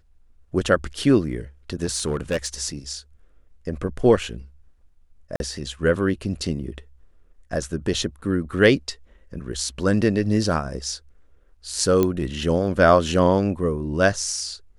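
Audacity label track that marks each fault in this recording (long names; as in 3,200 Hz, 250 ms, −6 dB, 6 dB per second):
1.840000	2.470000	clipping −18.5 dBFS
5.360000	5.400000	drop-out 41 ms
12.030000	12.030000	click −8 dBFS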